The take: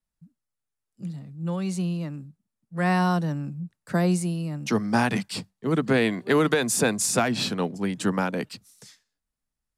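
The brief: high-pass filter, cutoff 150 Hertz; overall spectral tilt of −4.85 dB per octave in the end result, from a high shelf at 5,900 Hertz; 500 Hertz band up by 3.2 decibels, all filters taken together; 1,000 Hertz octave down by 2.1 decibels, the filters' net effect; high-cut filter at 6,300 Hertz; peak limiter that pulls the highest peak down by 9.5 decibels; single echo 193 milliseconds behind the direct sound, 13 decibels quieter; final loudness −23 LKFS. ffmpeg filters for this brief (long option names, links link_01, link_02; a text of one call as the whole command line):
ffmpeg -i in.wav -af "highpass=150,lowpass=6300,equalizer=frequency=500:width_type=o:gain=5,equalizer=frequency=1000:width_type=o:gain=-5.5,highshelf=frequency=5900:gain=3.5,alimiter=limit=-17.5dB:level=0:latency=1,aecho=1:1:193:0.224,volume=5dB" out.wav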